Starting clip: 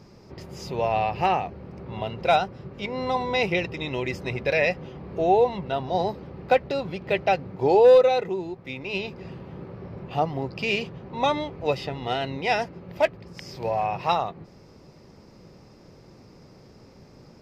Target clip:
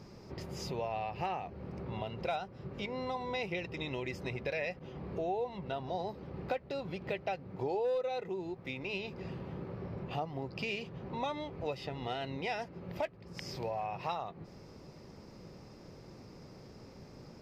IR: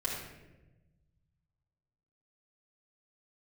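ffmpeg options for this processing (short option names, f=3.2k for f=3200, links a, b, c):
-filter_complex "[0:a]asettb=1/sr,asplit=3[a][b][c];[a]atrim=end=4.794[d];[b]atrim=start=4.79:end=6.34,asetpts=PTS-STARTPTS,afade=t=in:d=0.004:c=qsin,afade=t=out:st=1.546:d=0.004:c=qsin,agate=range=-33dB:threshold=-37dB:ratio=3:detection=peak[e];[c]atrim=start=6.336[f];[d][e]acrossfade=d=0.004:c1=hsin:c2=qsin[g];[g][f]acrossfade=d=0.004:c1=qsin:c2=hsin,acompressor=threshold=-35dB:ratio=3,volume=-2dB"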